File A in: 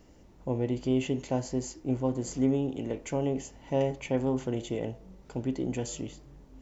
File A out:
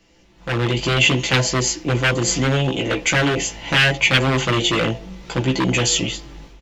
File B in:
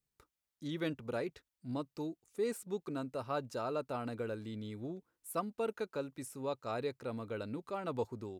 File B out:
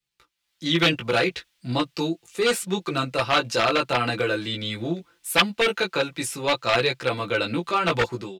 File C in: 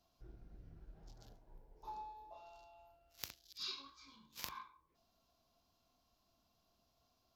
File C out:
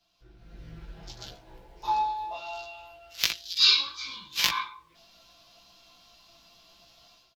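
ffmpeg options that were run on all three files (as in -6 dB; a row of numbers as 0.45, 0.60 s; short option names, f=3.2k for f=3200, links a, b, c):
-filter_complex "[0:a]flanger=delay=15.5:depth=2.2:speed=0.71,asplit=2[a][b];[b]asoftclip=type=tanh:threshold=-25dB,volume=-4.5dB[c];[a][c]amix=inputs=2:normalize=0,aecho=1:1:5.9:0.49,acrossover=split=240|3800[d][e][f];[e]aeval=exprs='0.0316*(abs(mod(val(0)/0.0316+3,4)-2)-1)':c=same[g];[d][g][f]amix=inputs=3:normalize=0,dynaudnorm=f=340:g=3:m=16dB,equalizer=f=3.1k:w=0.55:g=14,volume=-4.5dB"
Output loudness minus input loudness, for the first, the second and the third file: +13.0, +16.5, +25.0 LU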